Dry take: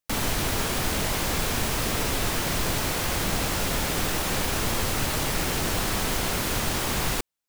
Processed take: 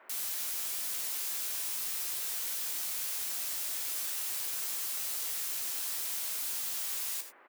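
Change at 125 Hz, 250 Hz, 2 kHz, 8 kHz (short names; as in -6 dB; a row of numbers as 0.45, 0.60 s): under -40 dB, under -30 dB, -16.5 dB, -5.0 dB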